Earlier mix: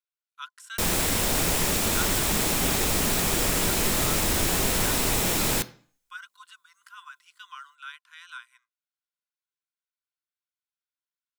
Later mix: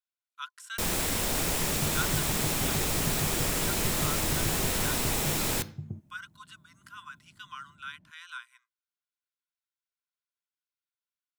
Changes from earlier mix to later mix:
first sound -4.5 dB; second sound: unmuted

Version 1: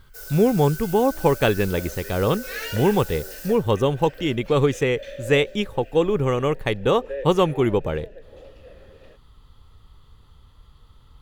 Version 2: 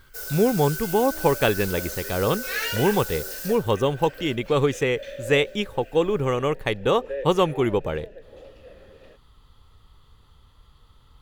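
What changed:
speech: add bass shelf 370 Hz -4 dB; first sound +4.5 dB

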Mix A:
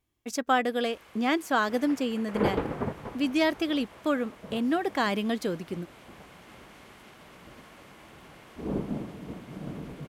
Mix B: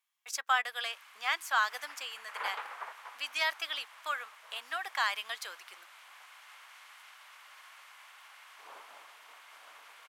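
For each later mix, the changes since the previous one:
master: add high-pass 980 Hz 24 dB/octave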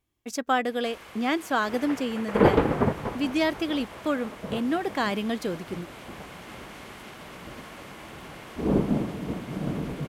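background +8.0 dB; master: remove high-pass 980 Hz 24 dB/octave

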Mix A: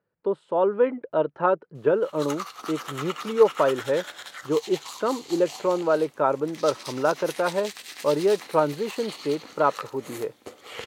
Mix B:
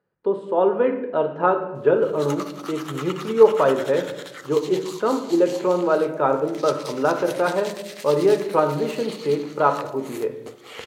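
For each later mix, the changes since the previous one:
speech: send on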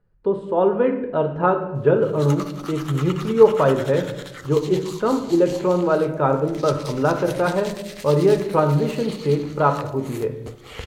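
master: remove high-pass 270 Hz 12 dB/octave

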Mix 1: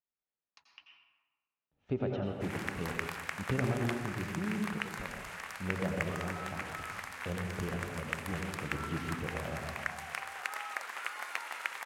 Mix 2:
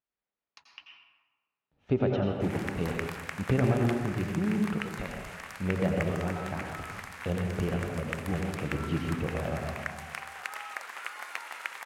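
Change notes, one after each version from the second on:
speech +7.0 dB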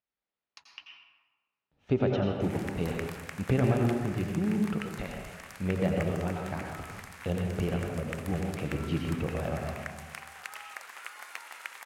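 background -5.5 dB; master: add treble shelf 4.3 kHz +6.5 dB

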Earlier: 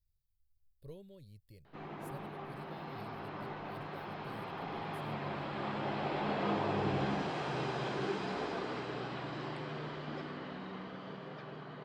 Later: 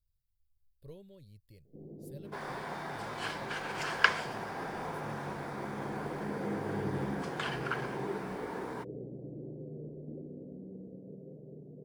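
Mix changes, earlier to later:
first sound: add elliptic low-pass 510 Hz, stop band 60 dB; second sound: unmuted

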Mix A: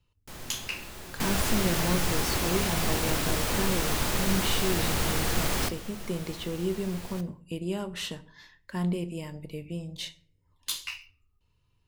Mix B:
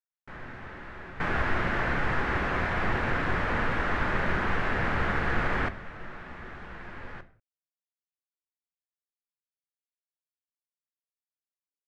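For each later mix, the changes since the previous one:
speech: muted; master: add resonant low-pass 1.7 kHz, resonance Q 2.5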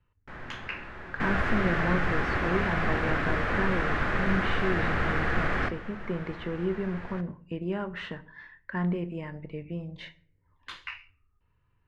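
speech: unmuted; second sound: add band-stop 920 Hz, Q 9

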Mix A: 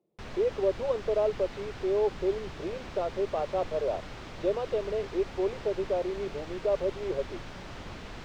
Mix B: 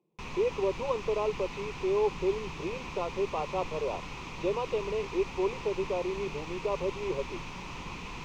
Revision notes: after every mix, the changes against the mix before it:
master: add graphic EQ with 31 bands 100 Hz -5 dB, 160 Hz +6 dB, 630 Hz -10 dB, 1 kHz +11 dB, 1.6 kHz -9 dB, 2.5 kHz +11 dB, 6.3 kHz +6 dB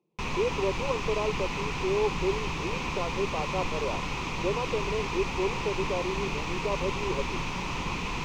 background +8.5 dB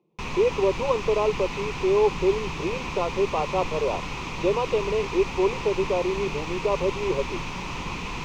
speech +7.0 dB

